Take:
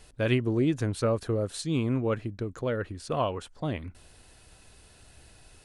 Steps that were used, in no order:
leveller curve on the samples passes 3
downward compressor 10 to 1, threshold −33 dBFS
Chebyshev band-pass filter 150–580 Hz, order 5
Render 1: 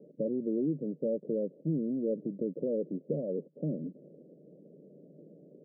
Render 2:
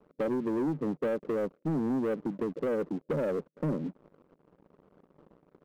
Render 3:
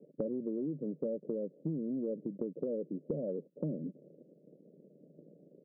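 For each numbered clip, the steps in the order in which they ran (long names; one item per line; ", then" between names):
downward compressor, then leveller curve on the samples, then Chebyshev band-pass filter
Chebyshev band-pass filter, then downward compressor, then leveller curve on the samples
leveller curve on the samples, then Chebyshev band-pass filter, then downward compressor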